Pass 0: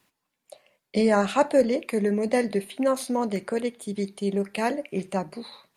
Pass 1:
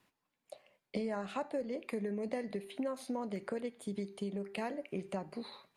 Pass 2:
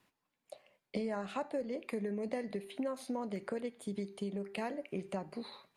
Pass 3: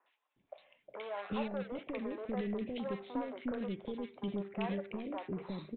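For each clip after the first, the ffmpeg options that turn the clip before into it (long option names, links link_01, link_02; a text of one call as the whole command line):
ffmpeg -i in.wav -af "acompressor=threshold=-31dB:ratio=6,highshelf=frequency=4600:gain=-8,bandreject=frequency=395:width_type=h:width=4,bandreject=frequency=790:width_type=h:width=4,bandreject=frequency=1185:width_type=h:width=4,bandreject=frequency=1580:width_type=h:width=4,bandreject=frequency=1975:width_type=h:width=4,bandreject=frequency=2370:width_type=h:width=4,bandreject=frequency=2765:width_type=h:width=4,bandreject=frequency=3160:width_type=h:width=4,bandreject=frequency=3555:width_type=h:width=4,bandreject=frequency=3950:width_type=h:width=4,bandreject=frequency=4345:width_type=h:width=4,bandreject=frequency=4740:width_type=h:width=4,bandreject=frequency=5135:width_type=h:width=4,bandreject=frequency=5530:width_type=h:width=4,bandreject=frequency=5925:width_type=h:width=4,bandreject=frequency=6320:width_type=h:width=4,bandreject=frequency=6715:width_type=h:width=4,bandreject=frequency=7110:width_type=h:width=4,volume=-3.5dB" out.wav
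ffmpeg -i in.wav -af anull out.wav
ffmpeg -i in.wav -filter_complex "[0:a]aresample=8000,volume=35dB,asoftclip=hard,volume=-35dB,aresample=44100,acrossover=split=470|1600[link_01][link_02][link_03];[link_03]adelay=60[link_04];[link_01]adelay=360[link_05];[link_05][link_02][link_04]amix=inputs=3:normalize=0,volume=3.5dB" out.wav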